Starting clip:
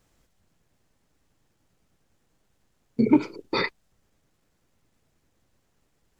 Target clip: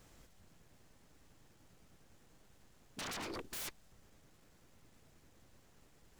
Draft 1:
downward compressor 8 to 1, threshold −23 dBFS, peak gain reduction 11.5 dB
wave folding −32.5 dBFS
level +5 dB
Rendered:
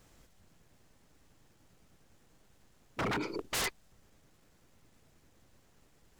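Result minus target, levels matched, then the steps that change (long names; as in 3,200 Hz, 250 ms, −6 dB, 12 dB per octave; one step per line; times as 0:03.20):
wave folding: distortion −7 dB
change: wave folding −43 dBFS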